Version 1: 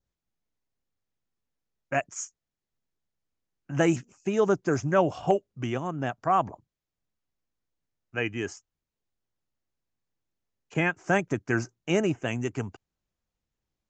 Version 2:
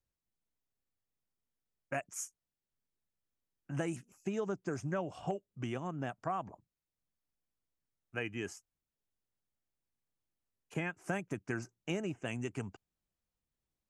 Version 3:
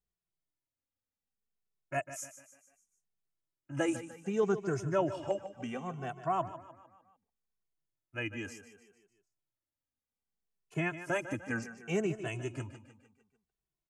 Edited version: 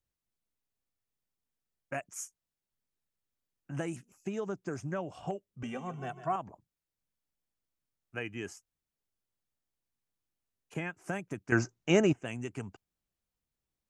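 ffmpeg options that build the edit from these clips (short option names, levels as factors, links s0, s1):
-filter_complex "[1:a]asplit=3[s0][s1][s2];[s0]atrim=end=5.632[s3];[2:a]atrim=start=5.628:end=6.362[s4];[s1]atrim=start=6.358:end=11.522[s5];[0:a]atrim=start=11.518:end=12.132[s6];[s2]atrim=start=12.128[s7];[s3][s4]acrossfade=d=0.004:c1=hsin:c2=hsin[s8];[s8][s5]acrossfade=d=0.004:c1=hsin:c2=hsin[s9];[s9][s6]acrossfade=d=0.004:c1=hsin:c2=hsin[s10];[s10][s7]acrossfade=d=0.004:c1=hsin:c2=hsin"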